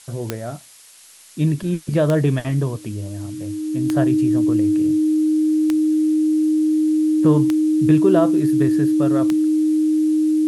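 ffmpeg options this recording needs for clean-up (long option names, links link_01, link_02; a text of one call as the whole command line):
ffmpeg -i in.wav -af "adeclick=threshold=4,bandreject=frequency=310:width=30,afftdn=noise_reduction=28:noise_floor=-37" out.wav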